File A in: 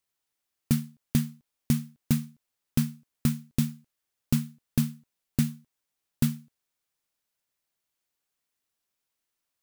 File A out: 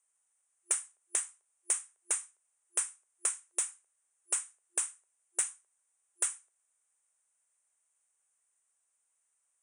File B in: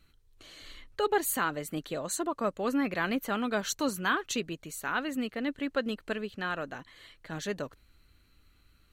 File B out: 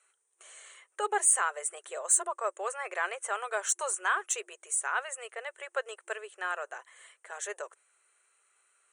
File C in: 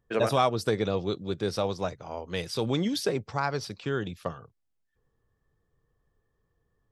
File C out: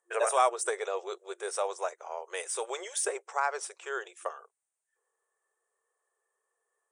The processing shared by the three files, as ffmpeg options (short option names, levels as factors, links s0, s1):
-filter_complex "[0:a]afftfilt=real='re*between(b*sr/4096,350,9800)':imag='im*between(b*sr/4096,350,9800)':win_size=4096:overlap=0.75,aexciter=amount=14.9:drive=9.5:freq=7100,acrossover=split=530 2600:gain=0.158 1 0.178[s0][s1][s2];[s0][s1][s2]amix=inputs=3:normalize=0,volume=1.19"